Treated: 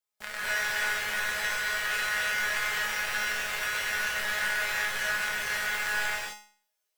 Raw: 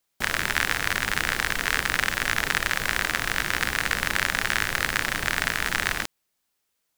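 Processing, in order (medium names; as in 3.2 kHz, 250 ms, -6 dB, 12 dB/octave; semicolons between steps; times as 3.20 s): resonant low shelf 390 Hz -7 dB, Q 1.5; feedback comb 210 Hz, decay 0.47 s, harmonics all, mix 90%; gated-style reverb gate 290 ms rising, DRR -7.5 dB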